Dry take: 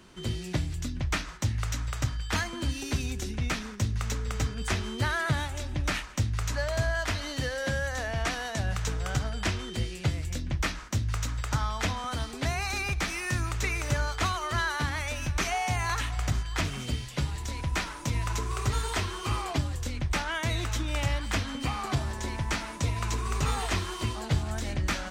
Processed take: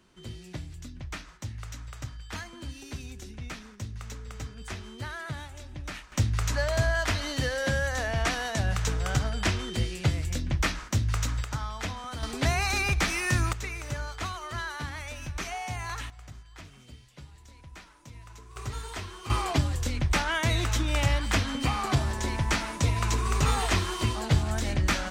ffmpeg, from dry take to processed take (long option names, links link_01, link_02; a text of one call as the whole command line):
ffmpeg -i in.wav -af "asetnsamples=nb_out_samples=441:pad=0,asendcmd='6.12 volume volume 2.5dB;11.44 volume volume -4.5dB;12.23 volume volume 4dB;13.53 volume volume -6dB;16.1 volume volume -17.5dB;18.56 volume volume -7.5dB;19.3 volume volume 3.5dB',volume=-9dB" out.wav